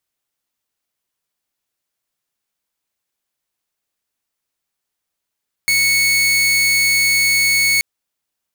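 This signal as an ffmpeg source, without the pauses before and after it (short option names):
-f lavfi -i "aevalsrc='0.316*(2*mod(2210*t,1)-1)':d=2.13:s=44100"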